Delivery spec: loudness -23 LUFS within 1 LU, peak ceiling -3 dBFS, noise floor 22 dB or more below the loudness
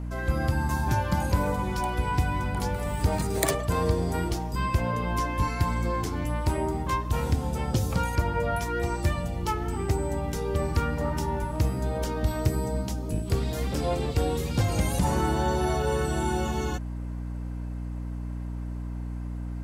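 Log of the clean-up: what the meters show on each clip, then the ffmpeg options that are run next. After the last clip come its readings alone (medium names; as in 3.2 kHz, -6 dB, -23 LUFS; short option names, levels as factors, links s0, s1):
hum 60 Hz; highest harmonic 300 Hz; hum level -30 dBFS; loudness -28.5 LUFS; peak level -4.5 dBFS; loudness target -23.0 LUFS
-> -af "bandreject=f=60:t=h:w=4,bandreject=f=120:t=h:w=4,bandreject=f=180:t=h:w=4,bandreject=f=240:t=h:w=4,bandreject=f=300:t=h:w=4"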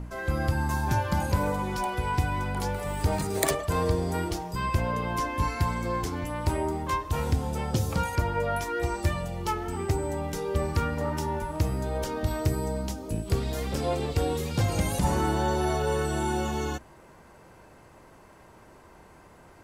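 hum not found; loudness -29.0 LUFS; peak level -5.0 dBFS; loudness target -23.0 LUFS
-> -af "volume=2,alimiter=limit=0.708:level=0:latency=1"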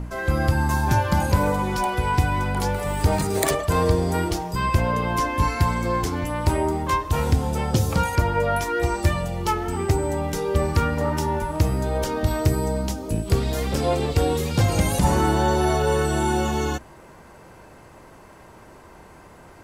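loudness -23.0 LUFS; peak level -3.0 dBFS; noise floor -47 dBFS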